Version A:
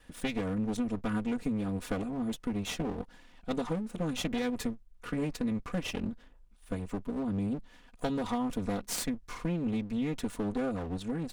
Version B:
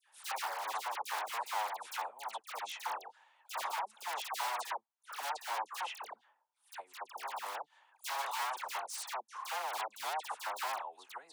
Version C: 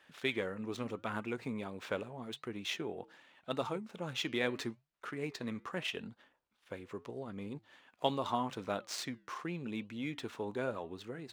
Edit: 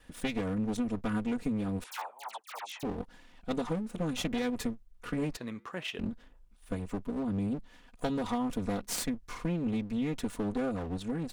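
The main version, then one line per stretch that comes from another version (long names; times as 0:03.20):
A
0:01.84–0:02.83: punch in from B
0:05.37–0:05.99: punch in from C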